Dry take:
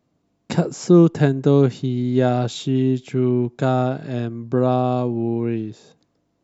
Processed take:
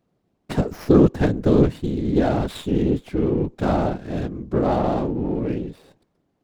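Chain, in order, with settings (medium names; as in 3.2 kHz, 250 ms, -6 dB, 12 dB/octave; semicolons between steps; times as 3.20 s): whisper effect; sliding maximum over 5 samples; trim -1.5 dB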